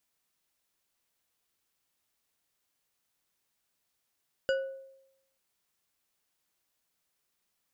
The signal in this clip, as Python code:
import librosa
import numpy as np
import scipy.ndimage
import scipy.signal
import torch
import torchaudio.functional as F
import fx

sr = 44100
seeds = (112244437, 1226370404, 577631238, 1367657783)

y = fx.strike_glass(sr, length_s=0.89, level_db=-23.5, body='bar', hz=537.0, decay_s=0.85, tilt_db=6.0, modes=5)